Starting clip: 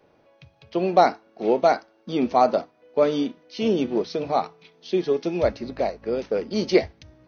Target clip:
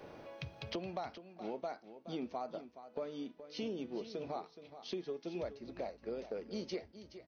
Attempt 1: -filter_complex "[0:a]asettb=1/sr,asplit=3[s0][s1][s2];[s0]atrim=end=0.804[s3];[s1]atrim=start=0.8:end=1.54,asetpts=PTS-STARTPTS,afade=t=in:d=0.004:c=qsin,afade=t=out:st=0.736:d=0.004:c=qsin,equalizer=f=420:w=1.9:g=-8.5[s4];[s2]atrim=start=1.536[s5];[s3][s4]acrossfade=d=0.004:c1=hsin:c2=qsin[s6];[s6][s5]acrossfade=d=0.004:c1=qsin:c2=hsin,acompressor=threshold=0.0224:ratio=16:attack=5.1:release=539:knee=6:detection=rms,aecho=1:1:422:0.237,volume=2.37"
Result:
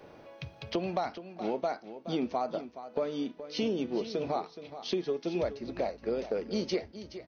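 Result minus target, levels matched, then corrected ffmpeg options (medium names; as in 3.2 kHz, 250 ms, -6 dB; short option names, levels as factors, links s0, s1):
compression: peak gain reduction -9.5 dB
-filter_complex "[0:a]asettb=1/sr,asplit=3[s0][s1][s2];[s0]atrim=end=0.804[s3];[s1]atrim=start=0.8:end=1.54,asetpts=PTS-STARTPTS,afade=t=in:d=0.004:c=qsin,afade=t=out:st=0.736:d=0.004:c=qsin,equalizer=f=420:w=1.9:g=-8.5[s4];[s2]atrim=start=1.536[s5];[s3][s4]acrossfade=d=0.004:c1=hsin:c2=qsin[s6];[s6][s5]acrossfade=d=0.004:c1=qsin:c2=hsin,acompressor=threshold=0.00708:ratio=16:attack=5.1:release=539:knee=6:detection=rms,aecho=1:1:422:0.237,volume=2.37"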